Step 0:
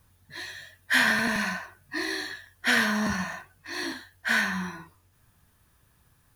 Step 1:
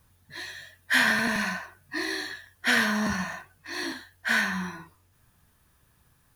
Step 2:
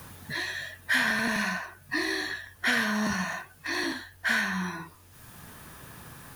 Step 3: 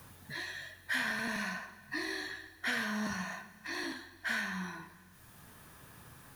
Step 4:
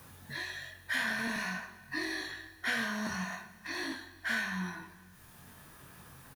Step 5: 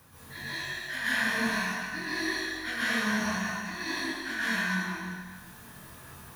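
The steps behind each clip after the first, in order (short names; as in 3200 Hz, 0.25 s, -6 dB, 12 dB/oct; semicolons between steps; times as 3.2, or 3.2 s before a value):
notches 50/100 Hz
three-band squash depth 70%
plate-style reverb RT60 1.8 s, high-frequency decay 0.95×, DRR 13 dB; gain -8.5 dB
doubler 22 ms -5 dB
plate-style reverb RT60 1.7 s, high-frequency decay 0.95×, pre-delay 0.11 s, DRR -9.5 dB; gain -4 dB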